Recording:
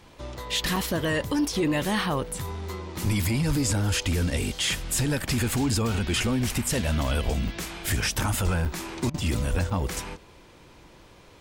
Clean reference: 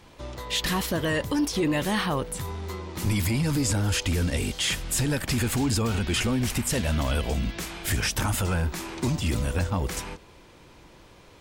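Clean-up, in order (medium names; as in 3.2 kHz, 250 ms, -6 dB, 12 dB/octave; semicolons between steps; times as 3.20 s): clip repair -17.5 dBFS; de-plosive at 3.47/7.24/8.44/9.50 s; interpolate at 0.76/7.48/8.65/9.70 s, 4.5 ms; interpolate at 9.10 s, 41 ms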